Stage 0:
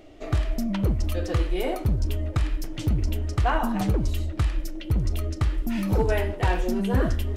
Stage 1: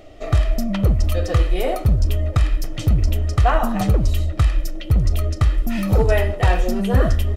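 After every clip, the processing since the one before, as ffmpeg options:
-af "aecho=1:1:1.6:0.41,volume=5dB"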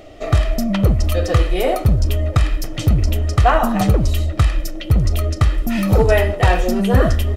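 -af "lowshelf=f=62:g=-6.5,volume=4.5dB"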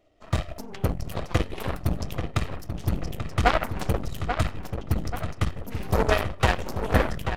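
-filter_complex "[0:a]aeval=exprs='0.794*(cos(1*acos(clip(val(0)/0.794,-1,1)))-cos(1*PI/2))+0.282*(cos(3*acos(clip(val(0)/0.794,-1,1)))-cos(3*PI/2))+0.02*(cos(8*acos(clip(val(0)/0.794,-1,1)))-cos(8*PI/2))':c=same,asplit=2[a][b];[b]adelay=836,lowpass=f=3.2k:p=1,volume=-7.5dB,asplit=2[c][d];[d]adelay=836,lowpass=f=3.2k:p=1,volume=0.47,asplit=2[e][f];[f]adelay=836,lowpass=f=3.2k:p=1,volume=0.47,asplit=2[g][h];[h]adelay=836,lowpass=f=3.2k:p=1,volume=0.47,asplit=2[i][j];[j]adelay=836,lowpass=f=3.2k:p=1,volume=0.47[k];[c][e][g][i][k]amix=inputs=5:normalize=0[l];[a][l]amix=inputs=2:normalize=0,volume=-1.5dB"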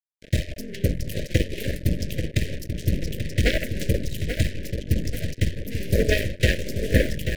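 -af "acrusher=bits=5:mix=0:aa=0.5,asuperstop=centerf=1000:order=12:qfactor=0.94,volume=3dB"

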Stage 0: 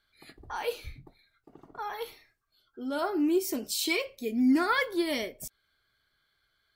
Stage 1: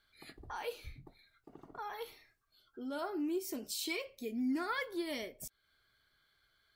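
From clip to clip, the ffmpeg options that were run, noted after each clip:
-af "acompressor=threshold=-52dB:ratio=1.5"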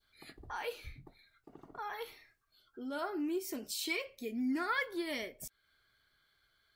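-af "adynamicequalizer=threshold=0.002:dfrequency=1800:dqfactor=1.2:tfrequency=1800:tqfactor=1.2:attack=5:release=100:ratio=0.375:range=2.5:mode=boostabove:tftype=bell"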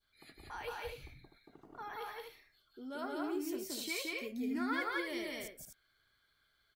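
-af "aecho=1:1:174.9|250.7:0.891|0.501,volume=-4.5dB"

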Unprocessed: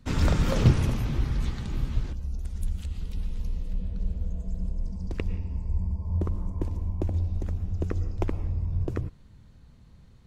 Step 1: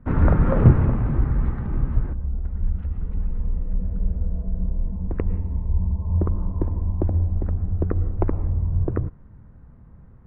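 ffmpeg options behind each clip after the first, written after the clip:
-af "lowpass=f=1.6k:w=0.5412,lowpass=f=1.6k:w=1.3066,volume=6dB"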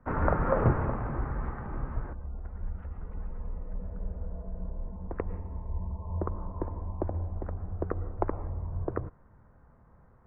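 -filter_complex "[0:a]acrossover=split=470 2000:gain=0.2 1 0.0794[a][b][c];[a][b][c]amix=inputs=3:normalize=0,volume=1.5dB"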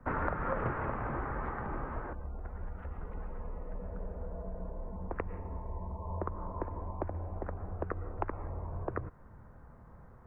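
-filter_complex "[0:a]acrossover=split=290|1300[a][b][c];[a]acompressor=threshold=-43dB:ratio=4[d];[b]acompressor=threshold=-42dB:ratio=4[e];[c]acompressor=threshold=-43dB:ratio=4[f];[d][e][f]amix=inputs=3:normalize=0,volume=4.5dB"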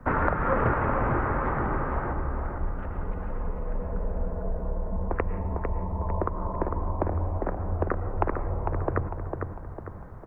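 -filter_complex "[0:a]asplit=2[a][b];[b]adelay=451,lowpass=f=2.3k:p=1,volume=-5dB,asplit=2[c][d];[d]adelay=451,lowpass=f=2.3k:p=1,volume=0.46,asplit=2[e][f];[f]adelay=451,lowpass=f=2.3k:p=1,volume=0.46,asplit=2[g][h];[h]adelay=451,lowpass=f=2.3k:p=1,volume=0.46,asplit=2[i][j];[j]adelay=451,lowpass=f=2.3k:p=1,volume=0.46,asplit=2[k][l];[l]adelay=451,lowpass=f=2.3k:p=1,volume=0.46[m];[a][c][e][g][i][k][m]amix=inputs=7:normalize=0,volume=8.5dB"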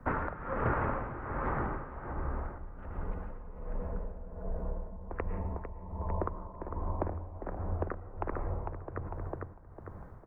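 -af "tremolo=f=1.3:d=0.72,volume=-5dB"

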